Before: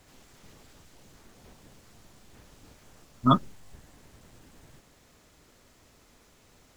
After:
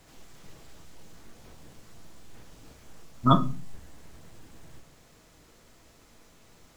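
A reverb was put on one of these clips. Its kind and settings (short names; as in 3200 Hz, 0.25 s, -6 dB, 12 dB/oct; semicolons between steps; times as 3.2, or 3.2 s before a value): shoebox room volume 200 m³, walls furnished, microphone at 0.68 m; gain +1 dB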